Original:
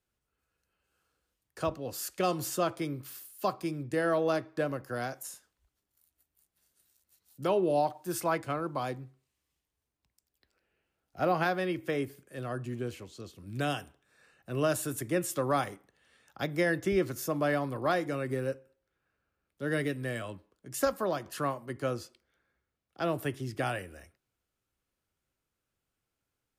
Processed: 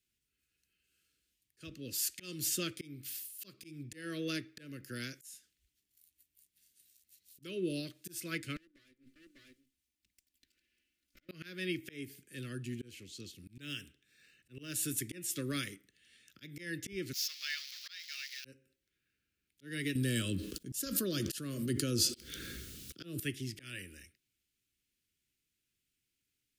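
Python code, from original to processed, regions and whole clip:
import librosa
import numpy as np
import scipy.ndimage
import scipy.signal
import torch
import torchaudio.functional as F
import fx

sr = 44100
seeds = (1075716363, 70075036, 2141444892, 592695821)

y = fx.chain(x, sr, fx.lower_of_two(delay_ms=3.4),
    fx.echo_single(ms=596, db=-20.0),
    fx.gate_flip(shuts_db=-30.0, range_db=-26), at=(8.56, 11.29))
y = fx.chain(y, sr, fx.high_shelf(hz=11000.0, db=-4.5),
    fx.resample_linear(factor=2), at=(13.54, 14.74))
y = fx.chain(y, sr, fx.crossing_spikes(level_db=-33.0),
    fx.bessel_highpass(hz=1900.0, order=4),
    fx.high_shelf_res(hz=6700.0, db=-11.0, q=3.0), at=(17.13, 18.45))
y = fx.chain(y, sr, fx.peak_eq(hz=2100.0, db=-11.5, octaves=0.78),
    fx.env_flatten(amount_pct=70), at=(19.95, 23.2))
y = scipy.signal.sosfilt(scipy.signal.cheby1(2, 1.0, [290.0, 2400.0], 'bandstop', fs=sr, output='sos'), y)
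y = fx.low_shelf(y, sr, hz=410.0, db=-9.0)
y = fx.auto_swell(y, sr, attack_ms=274.0)
y = F.gain(torch.from_numpy(y), 4.5).numpy()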